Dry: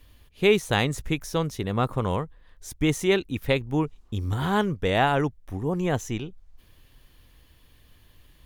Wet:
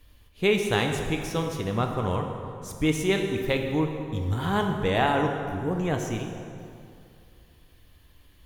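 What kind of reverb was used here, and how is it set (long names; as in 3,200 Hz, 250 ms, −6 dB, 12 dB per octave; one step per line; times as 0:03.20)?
dense smooth reverb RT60 2.5 s, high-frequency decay 0.65×, DRR 3 dB
level −2.5 dB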